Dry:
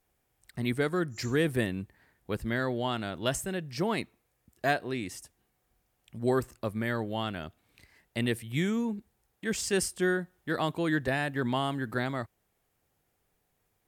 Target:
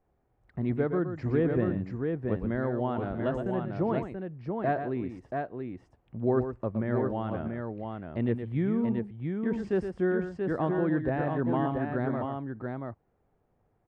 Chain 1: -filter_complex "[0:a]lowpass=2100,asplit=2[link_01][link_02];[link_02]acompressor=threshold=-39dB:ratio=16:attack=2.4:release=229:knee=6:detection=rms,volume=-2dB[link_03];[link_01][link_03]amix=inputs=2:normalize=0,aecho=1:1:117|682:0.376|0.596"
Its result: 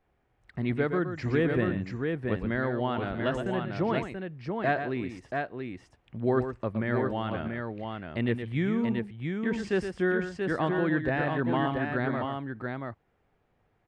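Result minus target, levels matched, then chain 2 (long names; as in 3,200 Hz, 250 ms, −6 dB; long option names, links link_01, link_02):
2,000 Hz band +7.5 dB
-filter_complex "[0:a]lowpass=990,asplit=2[link_01][link_02];[link_02]acompressor=threshold=-39dB:ratio=16:attack=2.4:release=229:knee=6:detection=rms,volume=-2dB[link_03];[link_01][link_03]amix=inputs=2:normalize=0,aecho=1:1:117|682:0.376|0.596"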